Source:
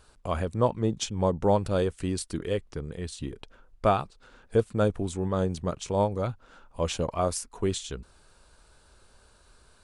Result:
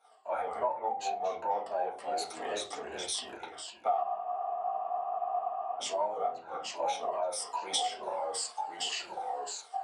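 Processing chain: drifting ripple filter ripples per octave 1.4, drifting -2.6 Hz, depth 15 dB; transient shaper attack -5 dB, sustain +5 dB; saturation -12 dBFS, distortion -23 dB; transient shaper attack -8 dB, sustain -1 dB; reverberation RT60 0.35 s, pre-delay 4 ms, DRR -4.5 dB; ever faster or slower copies 120 ms, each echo -2 st, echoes 2, each echo -6 dB; resonant high-pass 740 Hz, resonance Q 8.5; compression 8:1, threshold -29 dBFS, peak gain reduction 24 dB; spectral freeze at 4.03 s, 1.76 s; three bands expanded up and down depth 70%; trim -1.5 dB

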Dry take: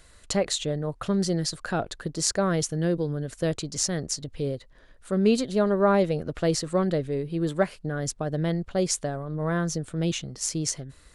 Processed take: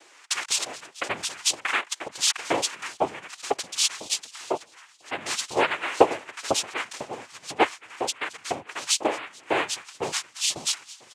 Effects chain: feedback delay 220 ms, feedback 58%, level -20.5 dB; LFO high-pass saw up 2 Hz 570–3600 Hz; noise-vocoded speech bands 4; trim +4 dB

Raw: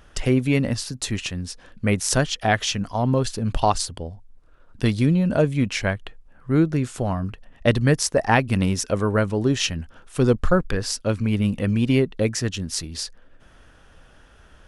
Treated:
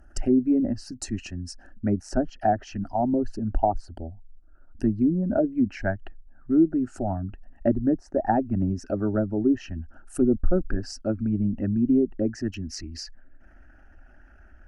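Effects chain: resonances exaggerated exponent 1.5; low-pass that closes with the level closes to 630 Hz, closed at -14.5 dBFS; peaking EQ 2.2 kHz -14 dB 0.46 oct, from 12.54 s 9 kHz; static phaser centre 710 Hz, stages 8; trim +1.5 dB

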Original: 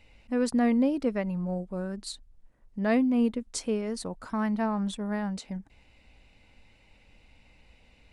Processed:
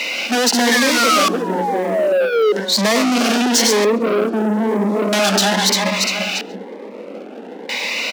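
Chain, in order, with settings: backward echo that repeats 173 ms, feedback 52%, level -4 dB; painted sound fall, 0.71–2.52 s, 410–1800 Hz -32 dBFS; overdrive pedal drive 39 dB, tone 3.9 kHz, clips at -11 dBFS; LFO low-pass square 0.39 Hz 420–6000 Hz; waveshaping leveller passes 3; steep high-pass 180 Hz 96 dB/octave; bass shelf 270 Hz -9 dB; on a send: delay 138 ms -23 dB; on the sum: Shepard-style phaser rising 1 Hz; trim -1 dB

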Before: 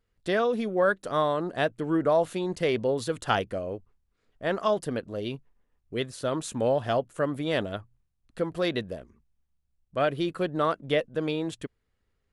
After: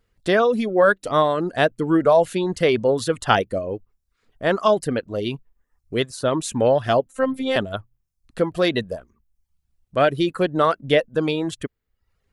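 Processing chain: reverb removal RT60 0.61 s; 7.06–7.56 s: robot voice 263 Hz; trim +8 dB

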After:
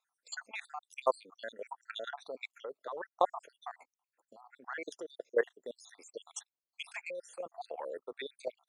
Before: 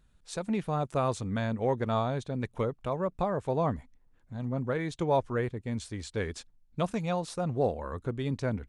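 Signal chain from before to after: random holes in the spectrogram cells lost 74%; high-pass 450 Hz 24 dB/octave; band-stop 3.1 kHz, Q 17; level held to a coarse grid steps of 16 dB; trim +8 dB

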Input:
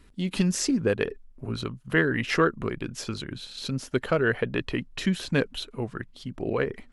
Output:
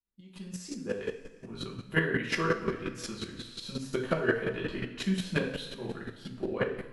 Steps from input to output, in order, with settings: fade-in on the opening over 1.90 s; two-slope reverb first 0.61 s, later 2.7 s, from -16 dB, DRR -5 dB; square tremolo 5.6 Hz, depth 60%, duty 15%; trim -5.5 dB

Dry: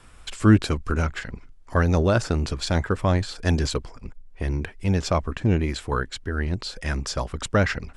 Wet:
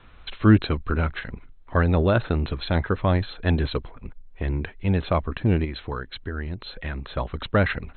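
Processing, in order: brick-wall FIR low-pass 4.2 kHz; 5.64–7.14 s: compression, threshold -27 dBFS, peak gain reduction 7.5 dB

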